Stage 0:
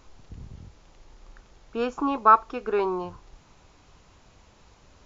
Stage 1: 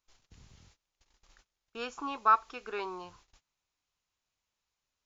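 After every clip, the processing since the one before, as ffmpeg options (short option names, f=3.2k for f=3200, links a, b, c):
-af "agate=range=-23dB:threshold=-47dB:ratio=16:detection=peak,tiltshelf=f=1.2k:g=-8.5,volume=-7.5dB"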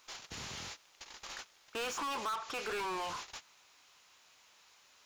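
-filter_complex "[0:a]acompressor=threshold=-37dB:ratio=4,asplit=2[a][b];[b]highpass=f=720:p=1,volume=34dB,asoftclip=type=tanh:threshold=-28dB[c];[a][c]amix=inputs=2:normalize=0,lowpass=f=5.6k:p=1,volume=-6dB,volume=-3dB"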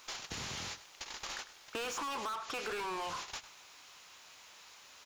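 -af "acompressor=threshold=-48dB:ratio=3,aecho=1:1:101:0.178,volume=7.5dB"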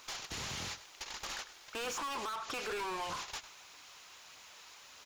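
-af "asoftclip=type=hard:threshold=-38dB,aphaser=in_gain=1:out_gain=1:delay=3.2:decay=0.24:speed=1.6:type=triangular,volume=1dB"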